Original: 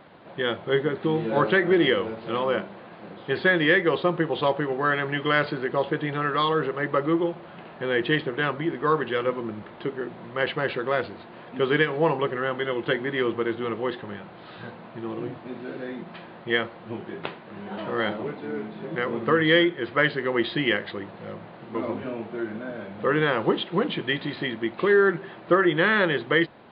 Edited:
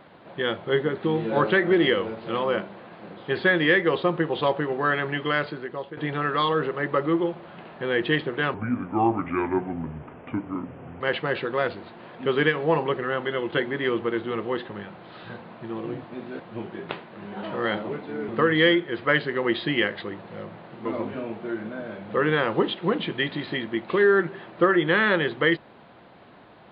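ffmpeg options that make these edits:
-filter_complex "[0:a]asplit=6[s0][s1][s2][s3][s4][s5];[s0]atrim=end=5.97,asetpts=PTS-STARTPTS,afade=t=out:st=5.06:d=0.91:silence=0.211349[s6];[s1]atrim=start=5.97:end=8.544,asetpts=PTS-STARTPTS,afade=t=in:d=0.004:c=hsin:silence=0.211349[s7];[s2]atrim=start=8.54:end=10.34,asetpts=PTS-STARTPTS,asetrate=32193,aresample=44100[s8];[s3]atrim=start=10.336:end=15.732[s9];[s4]atrim=start=16.738:end=18.632[s10];[s5]atrim=start=19.178[s11];[s6][s7]concat=n=2:v=0:a=1[s12];[s12][s8]acrossfade=d=0.004:c1=hsin:c2=hsin[s13];[s13][s9]acrossfade=d=0.004:c1=hsin:c2=hsin[s14];[s14][s10]acrossfade=d=0.004:c1=hsin:c2=hsin[s15];[s15][s11]acrossfade=d=0.004:c1=hsin:c2=hsin"

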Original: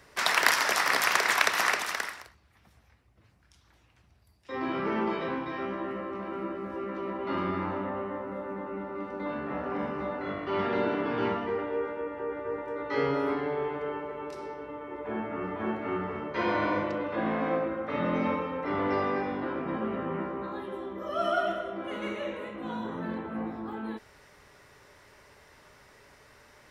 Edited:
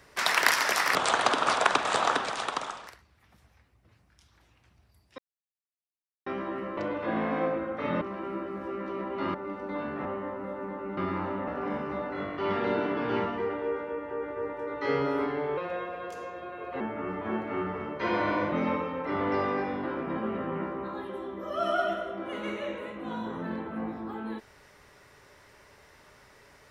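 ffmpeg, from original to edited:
-filter_complex "[0:a]asplit=14[s0][s1][s2][s3][s4][s5][s6][s7][s8][s9][s10][s11][s12][s13];[s0]atrim=end=0.954[s14];[s1]atrim=start=0.95:end=2.2,asetpts=PTS-STARTPTS,asetrate=28665,aresample=44100[s15];[s2]atrim=start=2.196:end=4.51,asetpts=PTS-STARTPTS,afade=t=out:st=2.31:d=0.004:c=hsin[s16];[s3]atrim=start=4.51:end=5.59,asetpts=PTS-STARTPTS,volume=0[s17];[s4]atrim=start=5.59:end=6.102,asetpts=PTS-STARTPTS,afade=t=in:d=0.004:c=hsin[s18];[s5]atrim=start=16.868:end=18.112[s19];[s6]atrim=start=6.098:end=7.432[s20];[s7]atrim=start=8.848:end=9.562[s21];[s8]atrim=start=7.928:end=8.852[s22];[s9]atrim=start=7.428:end=7.932[s23];[s10]atrim=start=9.558:end=13.664[s24];[s11]atrim=start=13.66:end=15.15,asetpts=PTS-STARTPTS,asetrate=53361,aresample=44100[s25];[s12]atrim=start=15.146:end=16.872[s26];[s13]atrim=start=18.108[s27];[s14][s15]acrossfade=d=0.004:c1=hsin:c2=hsin[s28];[s16][s17][s18]concat=n=3:v=0:a=1[s29];[s28][s29]acrossfade=d=0.004:c1=hsin:c2=hsin[s30];[s30][s19]acrossfade=d=0.004:c1=hsin:c2=hsin[s31];[s31][s20]acrossfade=d=0.004:c1=hsin:c2=hsin[s32];[s32][s21]acrossfade=d=0.004:c1=hsin:c2=hsin[s33];[s33][s22]acrossfade=d=0.004:c1=hsin:c2=hsin[s34];[s34][s23]acrossfade=d=0.004:c1=hsin:c2=hsin[s35];[s35][s24]acrossfade=d=0.004:c1=hsin:c2=hsin[s36];[s36][s25]acrossfade=d=0.004:c1=hsin:c2=hsin[s37];[s37][s26]acrossfade=d=0.004:c1=hsin:c2=hsin[s38];[s38][s27]acrossfade=d=0.004:c1=hsin:c2=hsin"

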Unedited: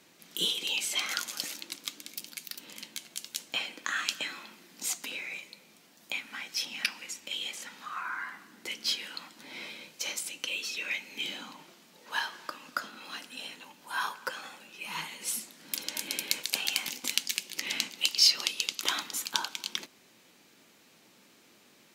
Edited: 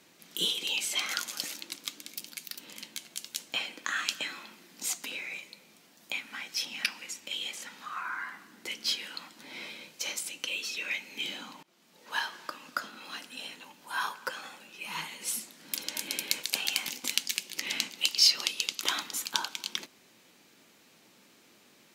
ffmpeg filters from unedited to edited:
-filter_complex "[0:a]asplit=2[s0][s1];[s0]atrim=end=11.63,asetpts=PTS-STARTPTS,afade=t=out:st=11.626:d=0.004:c=hsin:silence=0.0749894[s2];[s1]atrim=start=11.63,asetpts=PTS-STARTPTS,afade=t=in:d=0.46:silence=0.0749894[s3];[s2][s3]concat=n=2:v=0:a=1"

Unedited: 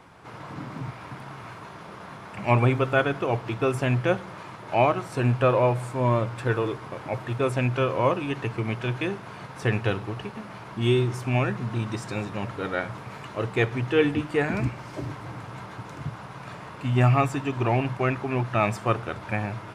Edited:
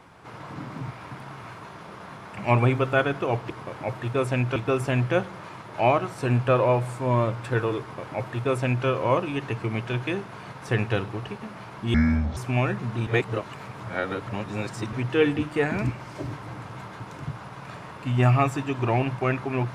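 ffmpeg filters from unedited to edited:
-filter_complex "[0:a]asplit=7[s0][s1][s2][s3][s4][s5][s6];[s0]atrim=end=3.502[s7];[s1]atrim=start=6.748:end=7.812[s8];[s2]atrim=start=3.498:end=10.884[s9];[s3]atrim=start=10.88:end=11.15,asetpts=PTS-STARTPTS,asetrate=27783,aresample=44100[s10];[s4]atrim=start=11.146:end=11.852[s11];[s5]atrim=start=11.848:end=13.712,asetpts=PTS-STARTPTS,areverse[s12];[s6]atrim=start=13.708[s13];[s7][s8]acrossfade=d=0.004:c1=hsin:c2=hsin[s14];[s14][s9]acrossfade=d=0.004:c1=hsin:c2=hsin[s15];[s15][s10]acrossfade=d=0.004:c1=hsin:c2=hsin[s16];[s16][s11]acrossfade=d=0.004:c1=hsin:c2=hsin[s17];[s17][s12]acrossfade=d=0.004:c1=hsin:c2=hsin[s18];[s18][s13]acrossfade=d=0.004:c1=hsin:c2=hsin"

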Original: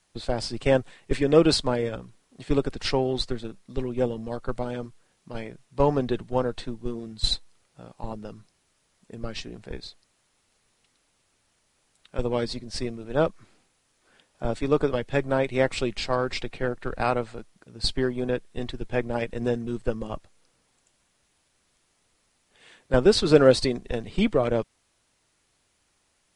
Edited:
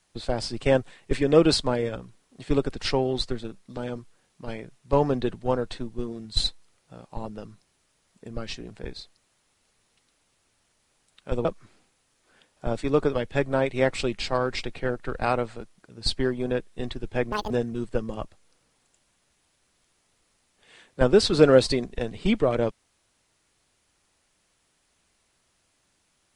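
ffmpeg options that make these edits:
-filter_complex "[0:a]asplit=5[s0][s1][s2][s3][s4];[s0]atrim=end=3.772[s5];[s1]atrim=start=4.638:end=12.322[s6];[s2]atrim=start=13.228:end=19.104[s7];[s3]atrim=start=19.1:end=19.43,asetpts=PTS-STARTPTS,asetrate=78939,aresample=44100,atrim=end_sample=8130,asetpts=PTS-STARTPTS[s8];[s4]atrim=start=19.426[s9];[s5][s6]acrossfade=d=0.004:c1=hsin:c2=hsin[s10];[s10][s7]acrossfade=d=0.004:c1=hsin:c2=hsin[s11];[s11][s8]acrossfade=d=0.004:c1=hsin:c2=hsin[s12];[s12][s9]acrossfade=d=0.004:c1=hsin:c2=hsin"

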